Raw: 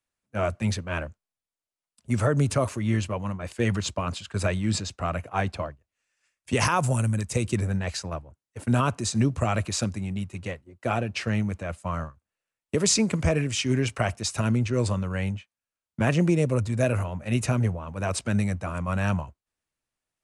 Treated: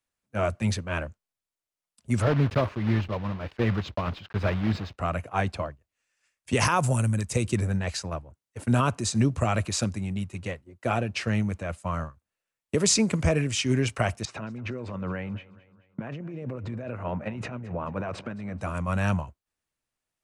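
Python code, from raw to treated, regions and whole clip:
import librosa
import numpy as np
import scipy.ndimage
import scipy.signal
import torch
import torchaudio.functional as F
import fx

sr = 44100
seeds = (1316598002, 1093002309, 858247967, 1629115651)

y = fx.chain(x, sr, fx.block_float(bits=3),
    fx.air_absorb(metres=310.0), at=(2.22, 4.98))
y = fx.chain(y, sr, fx.over_compress(threshold_db=-31.0, ratio=-1.0),
    fx.bandpass_edges(low_hz=140.0, high_hz=2200.0),
    fx.echo_feedback(ms=217, feedback_pct=47, wet_db=-19), at=(14.25, 18.61))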